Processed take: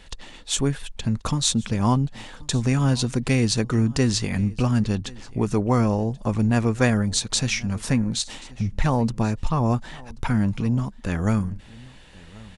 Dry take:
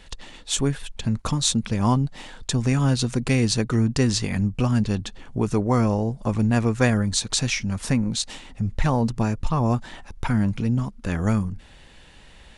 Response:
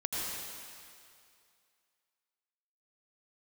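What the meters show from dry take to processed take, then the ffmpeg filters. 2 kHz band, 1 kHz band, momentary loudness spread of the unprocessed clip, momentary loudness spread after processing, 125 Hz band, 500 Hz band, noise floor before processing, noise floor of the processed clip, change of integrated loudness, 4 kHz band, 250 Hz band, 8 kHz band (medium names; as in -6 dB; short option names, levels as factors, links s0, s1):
0.0 dB, 0.0 dB, 9 LU, 9 LU, 0.0 dB, 0.0 dB, -48 dBFS, -46 dBFS, 0.0 dB, 0.0 dB, 0.0 dB, 0.0 dB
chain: -af "aecho=1:1:1083:0.075"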